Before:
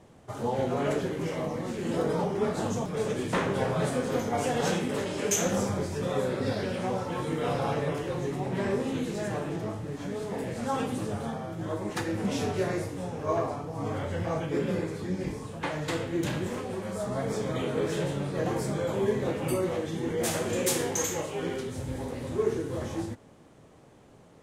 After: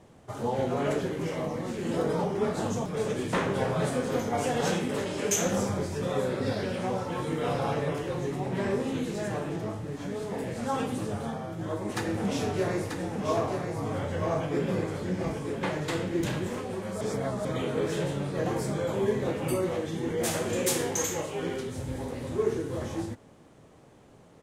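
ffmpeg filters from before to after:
-filter_complex "[0:a]asplit=3[a][b][c];[a]afade=t=out:st=11.88:d=0.02[d];[b]aecho=1:1:937:0.531,afade=t=in:st=11.88:d=0.02,afade=t=out:st=16.39:d=0.02[e];[c]afade=t=in:st=16.39:d=0.02[f];[d][e][f]amix=inputs=3:normalize=0,asplit=3[g][h][i];[g]atrim=end=17.012[j];[h]atrim=start=17.008:end=17.452,asetpts=PTS-STARTPTS,areverse[k];[i]atrim=start=17.448[l];[j][k]acrossfade=d=0.004:c1=hsin:c2=hsin[m];[m][l]acrossfade=d=0.004:c1=hsin:c2=hsin"

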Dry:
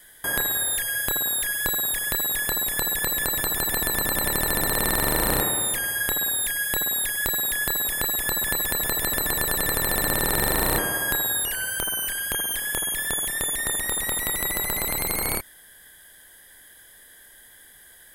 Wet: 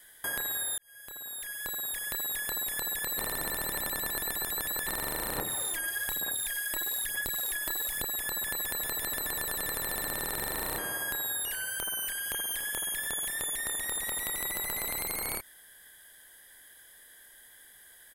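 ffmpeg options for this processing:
-filter_complex "[0:a]asettb=1/sr,asplit=3[a][b][c];[a]atrim=end=5.374[d];[b]atrim=start=5.37:end=8.05,asetpts=PTS-STARTPTS,afade=t=in:d=0.004:c=qsin,afade=t=out:st=2.676:d=0.004:c=qsin,aphaser=in_gain=1:out_gain=1:delay=3.2:decay=0.55:speed=1.1:type=sinusoidal[e];[c]atrim=start=8.046[f];[d][e]acrossfade=d=0.004:c1=hsin:c2=qsin[g];[g][f]acrossfade=d=0.004:c1=qsin:c2=hsin,asplit=3[h][i][j];[h]afade=t=out:st=8.77:d=0.02[k];[i]bandreject=f=177.9:t=h:w=4,bandreject=f=355.8:t=h:w=4,bandreject=f=533.7:t=h:w=4,bandreject=f=711.6:t=h:w=4,bandreject=f=889.5:t=h:w=4,bandreject=f=1.0674k:t=h:w=4,bandreject=f=1.2453k:t=h:w=4,bandreject=f=1.4232k:t=h:w=4,bandreject=f=1.6011k:t=h:w=4,bandreject=f=1.779k:t=h:w=4,bandreject=f=1.9569k:t=h:w=4,bandreject=f=2.1348k:t=h:w=4,bandreject=f=2.3127k:t=h:w=4,bandreject=f=2.4906k:t=h:w=4,bandreject=f=2.6685k:t=h:w=4,bandreject=f=2.8464k:t=h:w=4,bandreject=f=3.0243k:t=h:w=4,bandreject=f=3.2022k:t=h:w=4,bandreject=f=3.3801k:t=h:w=4,bandreject=f=3.558k:t=h:w=4,bandreject=f=3.7359k:t=h:w=4,bandreject=f=3.9138k:t=h:w=4,bandreject=f=4.0917k:t=h:w=4,bandreject=f=4.2696k:t=h:w=4,bandreject=f=4.4475k:t=h:w=4,bandreject=f=4.6254k:t=h:w=4,bandreject=f=4.8033k:t=h:w=4,bandreject=f=4.9812k:t=h:w=4,bandreject=f=5.1591k:t=h:w=4,bandreject=f=5.337k:t=h:w=4,bandreject=f=5.5149k:t=h:w=4,bandreject=f=5.6928k:t=h:w=4,bandreject=f=5.8707k:t=h:w=4,afade=t=in:st=8.77:d=0.02,afade=t=out:st=11.58:d=0.02[l];[j]afade=t=in:st=11.58:d=0.02[m];[k][l][m]amix=inputs=3:normalize=0,asplit=3[n][o][p];[n]afade=t=out:st=12.24:d=0.02[q];[o]aecho=1:1:287:0.266,afade=t=in:st=12.24:d=0.02,afade=t=out:st=15.02:d=0.02[r];[p]afade=t=in:st=15.02:d=0.02[s];[q][r][s]amix=inputs=3:normalize=0,asplit=4[t][u][v][w];[t]atrim=end=0.78,asetpts=PTS-STARTPTS,afade=t=out:st=0.776:d=0.004:c=hsin[x];[u]atrim=start=0.78:end=3.182,asetpts=PTS-STARTPTS,afade=t=in:d=1.83[y];[v]atrim=start=3.178:end=4.872,asetpts=PTS-STARTPTS,areverse[z];[w]atrim=start=4.868[aa];[x][y]concat=n=2:v=0:a=1[ab];[ab][z]acrossfade=d=0.004:c1=hsin:c2=hsin[ac];[ac][aa]acrossfade=d=0.004:c1=hsin:c2=hsin,lowshelf=f=350:g=-6,acompressor=threshold=-25dB:ratio=6,volume=-4.5dB"

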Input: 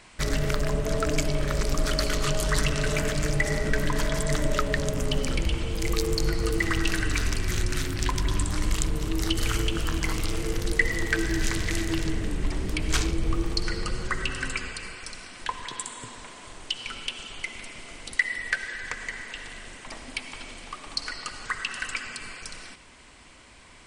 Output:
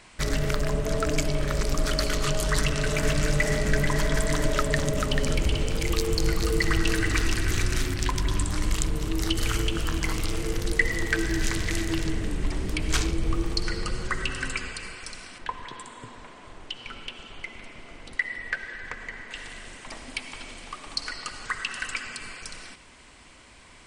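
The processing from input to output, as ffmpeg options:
-filter_complex "[0:a]asettb=1/sr,asplit=3[a][b][c];[a]atrim=end=2.594[d];[b]atrim=start=2.59:end=7.94,asetpts=PTS-STARTPTS,afade=t=in:d=0.004:c=qsin,afade=t=out:st=5.346:d=0.004:c=qsin,aecho=1:1:438:0.596,atrim=end_sample=235935[e];[c]atrim=start=7.936[f];[d][e]acrossfade=d=0.004:c1=hsin:c2=qsin[g];[g][f]acrossfade=d=0.004:c1=qsin:c2=hsin,asettb=1/sr,asplit=3[h][i][j];[h]atrim=end=15.384[k];[i]atrim=start=15.38:end=19.31,asetpts=PTS-STARTPTS,afade=t=in:d=0.004:c=qsin,afade=t=out:st=3.926:d=0.004:c=qsin,lowpass=f=1.8k:p=1[l];[j]atrim=start=19.306[m];[k][l]acrossfade=d=0.004:c1=hsin:c2=qsin[n];[n][m]acrossfade=d=0.004:c1=qsin:c2=hsin"

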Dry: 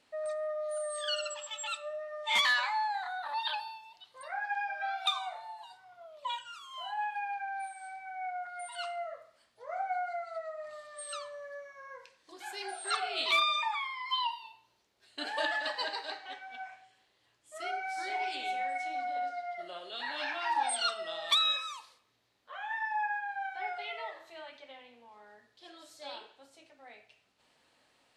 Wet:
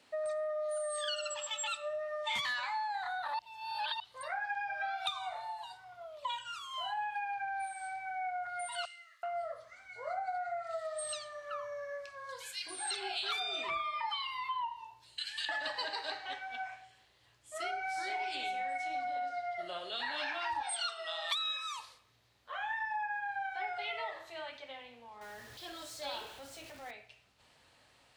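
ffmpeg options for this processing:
-filter_complex "[0:a]asettb=1/sr,asplit=3[a][b][c];[a]atrim=end=8.854[d];[b]atrim=start=8.85:end=15.49,asetpts=PTS-STARTPTS,afade=t=in:d=0.004:c=qsin,afade=t=out:st=6.636:d=0.004:c=qsin,acrossover=split=2100[e][f];[e]adelay=380[g];[g][f]amix=inputs=2:normalize=0,atrim=end_sample=292824[h];[c]atrim=start=15.486[i];[d][h]acrossfade=d=0.004:c1=hsin:c2=qsin[j];[j][i]acrossfade=d=0.004:c1=qsin:c2=hsin,asettb=1/sr,asplit=3[k][l][m];[k]atrim=end=20.614[n];[l]atrim=start=20.61:end=21.77,asetpts=PTS-STARTPTS,afade=t=in:d=0.004:c=qsin,afade=t=out:st=1.156:d=0.004:c=qsin,highpass=750[o];[m]atrim=start=21.766[p];[n][o]acrossfade=d=0.004:c1=hsin:c2=qsin[q];[q][p]acrossfade=d=0.004:c1=qsin:c2=hsin,asettb=1/sr,asplit=3[r][s][t];[r]atrim=end=25.214[u];[s]atrim=start=25.21:end=26.91,asetpts=PTS-STARTPTS,afade=t=in:d=0.004:c=qsin,afade=t=out:st=1.696:d=0.004:c=qsin,aeval=exprs='val(0)+0.5*0.00251*sgn(val(0))':c=same[v];[t]atrim=start=26.906[w];[u][v]acrossfade=d=0.004:c1=hsin:c2=qsin[x];[x][w]acrossfade=d=0.004:c1=qsin:c2=hsin,asplit=3[y][z][aa];[y]atrim=end=3.392[ab];[z]atrim=start=3.388:end=4.002,asetpts=PTS-STARTPTS,areverse[ac];[aa]atrim=start=3.998[ad];[ab][ac]acrossfade=d=0.004:c1=hsin:c2=hsin[ae];[ae][ad]acrossfade=d=0.004:c1=hsin:c2=hsin,acrossover=split=230[af][ag];[ag]acompressor=threshold=-38dB:ratio=5[ah];[af][ah]amix=inputs=2:normalize=0,highpass=54,asubboost=boost=4.5:cutoff=110,volume=4dB"

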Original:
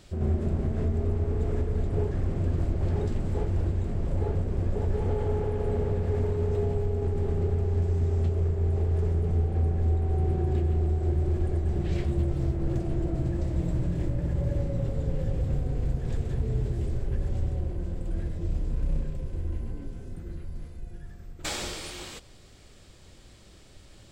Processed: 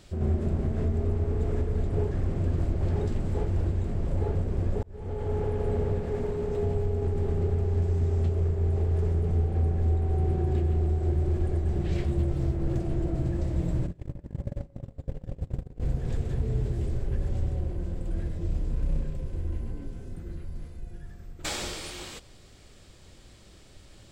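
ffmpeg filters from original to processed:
-filter_complex "[0:a]asettb=1/sr,asplit=3[a][b][c];[a]atrim=end=5.984[d];[b]atrim=start=5.98:end=6.62,asetpts=PTS-STARTPTS,afade=t=in:d=0.004:c=qsin,afade=t=out:st=0.636:d=0.004:c=qsin,equalizer=f=84:w=4.7:g=-15[e];[c]atrim=start=6.616[f];[d][e]acrossfade=d=0.004:c1=hsin:c2=qsin[g];[g][f]acrossfade=d=0.004:c1=qsin:c2=hsin,asplit=3[h][i][j];[h]afade=t=out:st=13.86:d=0.02[k];[i]agate=range=-27dB:threshold=-25dB:ratio=16:release=100:detection=peak,afade=t=in:st=13.86:d=0.02,afade=t=out:st=15.8:d=0.02[l];[j]afade=t=in:st=15.8:d=0.02[m];[k][l][m]amix=inputs=3:normalize=0,asplit=2[n][o];[n]atrim=end=4.83,asetpts=PTS-STARTPTS,afade=t=out:st=4.826:d=0.004:c=hsin[p];[o]atrim=start=4.83,asetpts=PTS-STARTPTS,afade=t=in:d=0.6[q];[p][q]concat=n=2:v=0:a=1"

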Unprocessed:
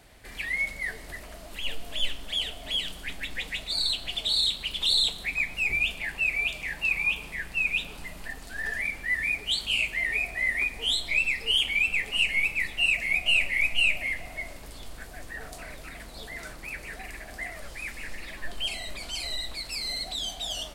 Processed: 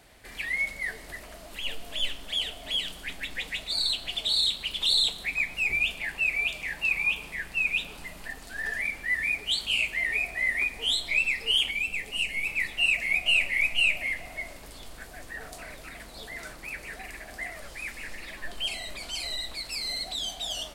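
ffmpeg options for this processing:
-filter_complex "[0:a]asettb=1/sr,asplit=3[a][b][c];[a]atrim=end=11.714[d];[b]atrim=start=11.71:end=12.47,asetpts=PTS-STARTPTS,afade=t=in:d=0.004:c=qsin,afade=t=out:st=0.756:d=0.004:c=qsin,equalizer=f=1.6k:w=0.58:g=-6.5[e];[c]atrim=start=12.466[f];[d][e]acrossfade=d=0.004:c1=hsin:c2=qsin[g];[g][f]acrossfade=d=0.004:c1=qsin:c2=hsin,lowshelf=f=170:g=-4.5"

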